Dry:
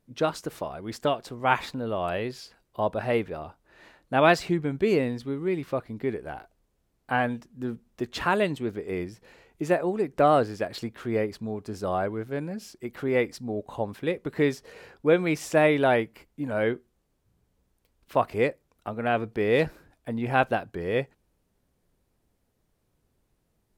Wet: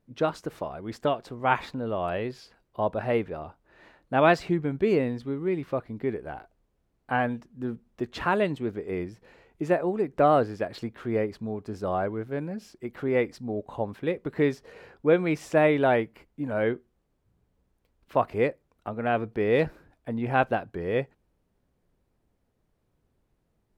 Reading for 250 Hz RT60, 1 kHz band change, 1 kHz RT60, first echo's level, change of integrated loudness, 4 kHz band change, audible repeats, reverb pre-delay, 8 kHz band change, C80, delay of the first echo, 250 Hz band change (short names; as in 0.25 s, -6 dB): none, -0.5 dB, none, none, -0.5 dB, -4.5 dB, none, none, n/a, none, none, 0.0 dB